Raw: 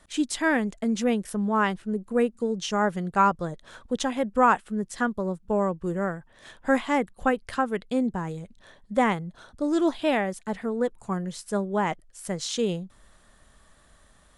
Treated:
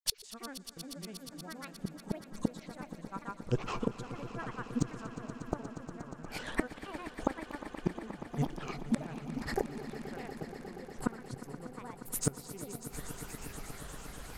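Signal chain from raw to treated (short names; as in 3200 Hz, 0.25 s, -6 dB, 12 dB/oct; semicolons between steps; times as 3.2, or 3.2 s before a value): grains, pitch spread up and down by 7 st; flipped gate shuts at -27 dBFS, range -33 dB; swelling echo 0.119 s, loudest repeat 5, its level -15 dB; gain +11.5 dB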